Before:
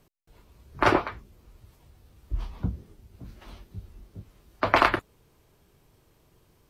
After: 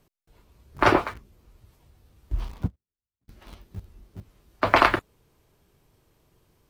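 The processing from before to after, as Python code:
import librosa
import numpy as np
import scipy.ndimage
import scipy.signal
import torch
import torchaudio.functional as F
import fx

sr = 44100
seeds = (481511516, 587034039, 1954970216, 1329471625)

p1 = np.where(np.abs(x) >= 10.0 ** (-37.5 / 20.0), x, 0.0)
p2 = x + (p1 * librosa.db_to_amplitude(-4.0))
p3 = fx.upward_expand(p2, sr, threshold_db=-42.0, expansion=2.5, at=(2.66, 3.28), fade=0.02)
y = p3 * librosa.db_to_amplitude(-2.0)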